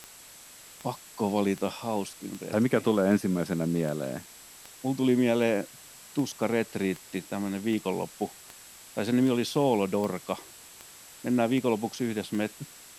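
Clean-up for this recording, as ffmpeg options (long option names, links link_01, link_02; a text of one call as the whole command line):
ffmpeg -i in.wav -af "adeclick=threshold=4,bandreject=frequency=7700:width=30,afwtdn=0.004" out.wav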